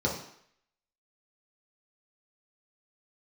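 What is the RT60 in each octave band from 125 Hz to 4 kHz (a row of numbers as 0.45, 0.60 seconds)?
0.50, 0.55, 0.65, 0.70, 0.70, 0.65 seconds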